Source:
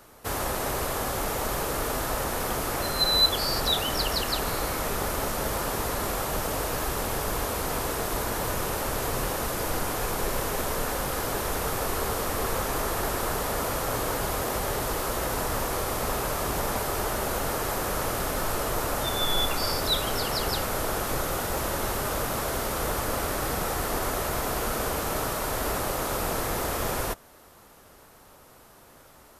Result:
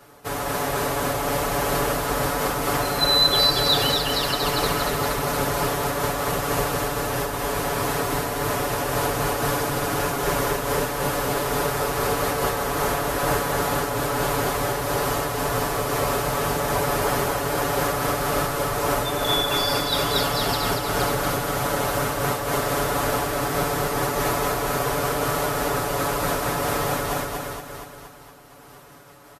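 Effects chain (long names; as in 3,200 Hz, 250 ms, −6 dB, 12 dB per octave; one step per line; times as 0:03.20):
high-pass filter 45 Hz
high-shelf EQ 4,900 Hz −5 dB
comb filter 7 ms, depth 92%
on a send: repeating echo 235 ms, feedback 57%, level −3 dB
on the sum: amplitude modulation by smooth noise, depth 55%
level +3.5 dB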